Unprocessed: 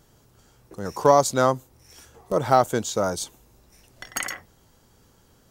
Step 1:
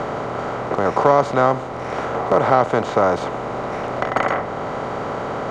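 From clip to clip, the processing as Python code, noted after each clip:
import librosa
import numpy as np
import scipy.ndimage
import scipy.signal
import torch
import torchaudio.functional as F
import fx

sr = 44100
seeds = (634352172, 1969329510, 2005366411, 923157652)

y = fx.bin_compress(x, sr, power=0.4)
y = scipy.signal.sosfilt(scipy.signal.cheby1(2, 1.0, 2200.0, 'lowpass', fs=sr, output='sos'), y)
y = fx.band_squash(y, sr, depth_pct=40)
y = y * 10.0 ** (1.5 / 20.0)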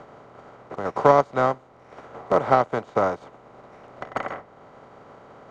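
y = fx.upward_expand(x, sr, threshold_db=-27.0, expansion=2.5)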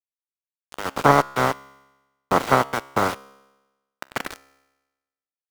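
y = fx.spec_clip(x, sr, under_db=15)
y = np.where(np.abs(y) >= 10.0 ** (-25.5 / 20.0), y, 0.0)
y = fx.comb_fb(y, sr, f0_hz=68.0, decay_s=1.1, harmonics='all', damping=0.0, mix_pct=40)
y = y * 10.0 ** (4.5 / 20.0)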